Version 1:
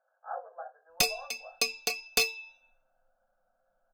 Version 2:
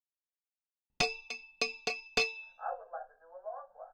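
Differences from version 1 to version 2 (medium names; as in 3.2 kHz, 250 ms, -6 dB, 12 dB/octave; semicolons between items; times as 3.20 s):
speech: entry +2.35 s; background: add distance through air 150 m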